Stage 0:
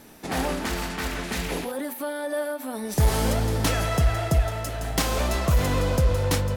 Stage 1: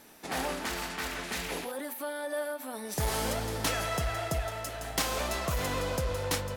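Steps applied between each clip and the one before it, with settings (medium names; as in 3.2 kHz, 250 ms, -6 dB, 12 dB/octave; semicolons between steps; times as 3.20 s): bass shelf 320 Hz -10 dB; trim -3.5 dB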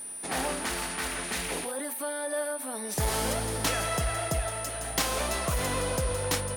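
whistle 9.4 kHz -39 dBFS; trim +2 dB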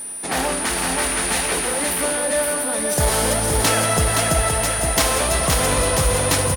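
bouncing-ball echo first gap 520 ms, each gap 0.9×, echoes 5; trim +8.5 dB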